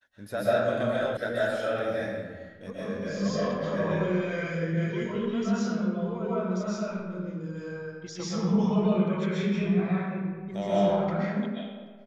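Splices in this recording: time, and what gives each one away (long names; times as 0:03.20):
0:01.17: cut off before it has died away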